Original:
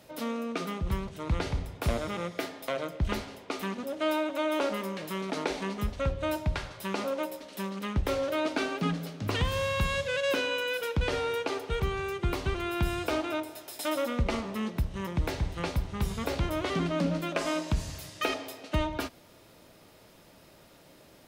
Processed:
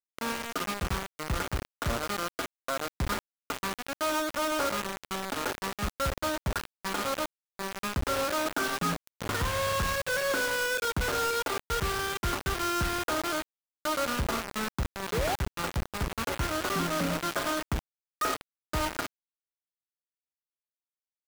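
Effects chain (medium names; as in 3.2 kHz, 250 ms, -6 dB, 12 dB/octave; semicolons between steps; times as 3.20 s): four-pole ladder low-pass 1.6 kHz, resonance 60%; painted sound rise, 15.12–15.36 s, 400–860 Hz -39 dBFS; companded quantiser 2-bit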